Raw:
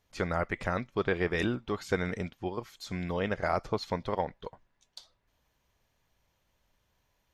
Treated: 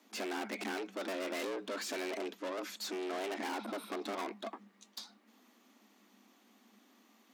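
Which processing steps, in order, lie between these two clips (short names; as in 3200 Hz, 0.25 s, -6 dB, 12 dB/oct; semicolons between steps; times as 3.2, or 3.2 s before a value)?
spectral repair 3.55–3.98, 1300–8200 Hz after; tube stage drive 46 dB, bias 0.2; frequency shift +190 Hz; gain +9 dB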